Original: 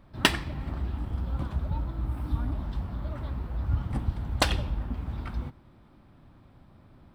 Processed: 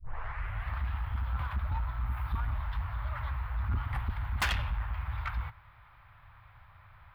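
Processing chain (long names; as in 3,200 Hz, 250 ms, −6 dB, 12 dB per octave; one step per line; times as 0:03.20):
turntable start at the beginning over 0.73 s
drawn EQ curve 110 Hz 0 dB, 250 Hz −30 dB, 1,000 Hz +7 dB, 2,100 Hz +11 dB, 4,700 Hz −5 dB, 6,900 Hz −16 dB, 13,000 Hz +5 dB
soft clipping −25 dBFS, distortion −9 dB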